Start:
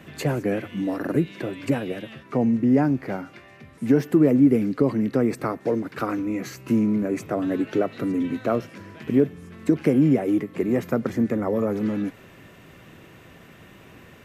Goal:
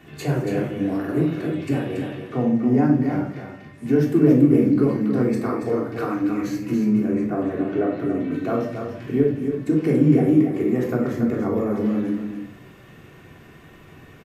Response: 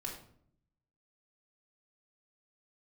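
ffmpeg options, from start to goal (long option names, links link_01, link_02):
-filter_complex "[0:a]asettb=1/sr,asplit=3[link_01][link_02][link_03];[link_01]atrim=end=7.064[link_04];[link_02]atrim=start=7.06:end=8.31,asetpts=PTS-STARTPTS,afade=type=in:duration=0.004:curve=qsin,afade=type=out:start_time=1.246:duration=0.004:curve=qsin,acrossover=split=2600[link_05][link_06];[link_06]acompressor=threshold=-57dB:ratio=4:attack=1:release=60[link_07];[link_05][link_07]amix=inputs=2:normalize=0[link_08];[link_03]atrim=start=8.306[link_09];[link_04][link_08]acrossfade=duration=0.004:curve1=hsin:curve2=qsin[link_10];[link_10][link_09]acrossfade=duration=0.004:curve1=qsin:curve2=hsin,aecho=1:1:281:0.447[link_11];[1:a]atrim=start_sample=2205[link_12];[link_11][link_12]afir=irnorm=-1:irlink=0"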